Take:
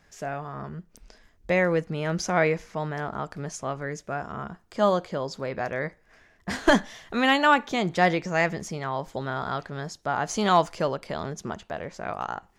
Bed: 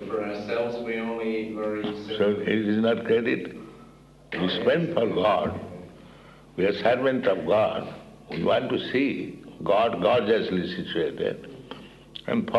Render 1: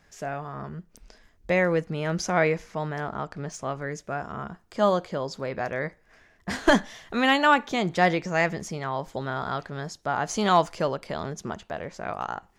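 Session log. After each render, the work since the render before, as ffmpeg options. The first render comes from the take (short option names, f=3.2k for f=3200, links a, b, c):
-filter_complex "[0:a]asettb=1/sr,asplit=3[a][b][c];[a]atrim=end=3.134[d];[b]atrim=start=3.13:end=3.59,asetpts=PTS-STARTPTS,afade=t=in:d=0.004:c=qsin,afade=t=out:st=0.456:d=0.004:c=qsin,adynamicsmooth=sensitivity=8:basefreq=6.9k[e];[c]atrim=start=3.586[f];[d][e]acrossfade=d=0.004:c1=hsin:c2=qsin[g];[g][f]acrossfade=d=0.004:c1=qsin:c2=hsin"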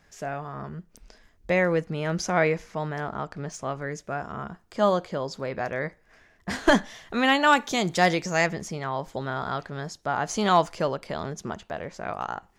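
-filter_complex "[0:a]asettb=1/sr,asplit=3[a][b][c];[a]atrim=end=7.474[d];[b]atrim=start=7.47:end=8.47,asetpts=PTS-STARTPTS,afade=t=in:d=0.004:c=qsin,afade=t=out:st=0.996:d=0.004:c=qsin,bass=f=250:g=0,treble=f=4k:g=11[e];[c]atrim=start=8.466[f];[d][e]acrossfade=d=0.004:c1=hsin:c2=qsin[g];[g][f]acrossfade=d=0.004:c1=qsin:c2=hsin"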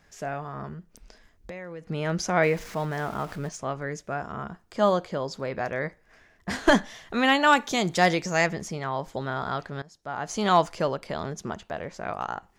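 -filter_complex "[0:a]asettb=1/sr,asplit=3[a][b][c];[a]atrim=end=0.734[d];[b]atrim=start=0.73:end=1.89,asetpts=PTS-STARTPTS,afade=t=in:d=0.004:c=qsin,afade=t=out:st=1.156:d=0.004:c=qsin,acompressor=threshold=-36dB:ratio=6:attack=3.2:release=140:knee=1:detection=peak[e];[c]atrim=start=1.886[f];[d][e]acrossfade=d=0.004:c1=hsin:c2=qsin[g];[g][f]acrossfade=d=0.004:c1=qsin:c2=hsin,asettb=1/sr,asplit=3[h][i][j];[h]atrim=end=2.434[k];[i]atrim=start=2.43:end=3.49,asetpts=PTS-STARTPTS,afade=t=in:d=0.004:c=qsin,afade=t=out:st=1.056:d=0.004:c=qsin,aeval=exprs='val(0)+0.5*0.0106*sgn(val(0))':c=same[l];[j]atrim=start=3.486[m];[k][l]acrossfade=d=0.004:c1=hsin:c2=qsin[n];[n][m]acrossfade=d=0.004:c1=qsin:c2=hsin,asplit=2[o][p];[o]atrim=end=9.82,asetpts=PTS-STARTPTS,afade=t=out:st=9.816:d=0.004:c=hsin:silence=0.0944061[q];[p]atrim=start=9.82,asetpts=PTS-STARTPTS,afade=t=in:d=0.73:silence=0.0944061[r];[q][r]concat=n=2:v=0:a=1"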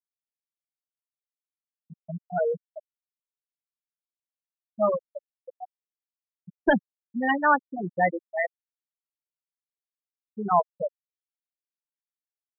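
-af "afftfilt=real='re*gte(hypot(re,im),0.398)':imag='im*gte(hypot(re,im),0.398)':win_size=1024:overlap=0.75,lowshelf=f=91:g=-12"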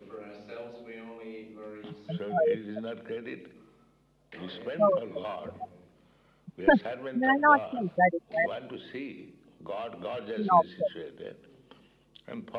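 -filter_complex "[1:a]volume=-15dB[a];[0:a][a]amix=inputs=2:normalize=0"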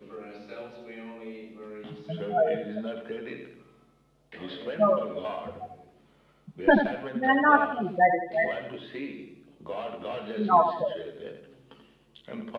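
-filter_complex "[0:a]asplit=2[a][b];[b]adelay=14,volume=-5dB[c];[a][c]amix=inputs=2:normalize=0,asplit=2[d][e];[e]aecho=0:1:85|170|255|340:0.398|0.155|0.0606|0.0236[f];[d][f]amix=inputs=2:normalize=0"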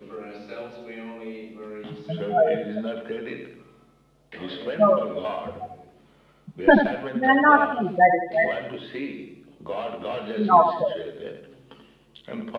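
-af "volume=4.5dB,alimiter=limit=-3dB:level=0:latency=1"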